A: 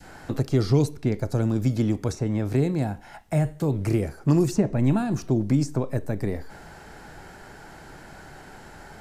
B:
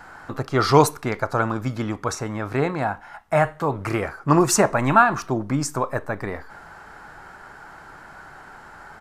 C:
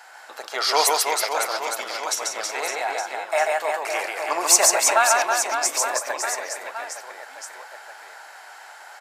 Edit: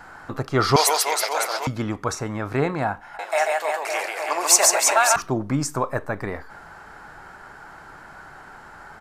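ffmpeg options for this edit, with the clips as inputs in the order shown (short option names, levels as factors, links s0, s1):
-filter_complex "[2:a]asplit=2[s0][s1];[1:a]asplit=3[s2][s3][s4];[s2]atrim=end=0.762[s5];[s0]atrim=start=0.758:end=1.672[s6];[s3]atrim=start=1.668:end=3.192[s7];[s1]atrim=start=3.188:end=5.162[s8];[s4]atrim=start=5.158[s9];[s5][s6]acrossfade=d=0.004:c1=hsin:c2=hsin[s10];[s10][s7]acrossfade=d=0.004:c1=hsin:c2=hsin[s11];[s11][s8]acrossfade=d=0.004:c1=hsin:c2=hsin[s12];[s12][s9]acrossfade=d=0.004:c1=hsin:c2=hsin"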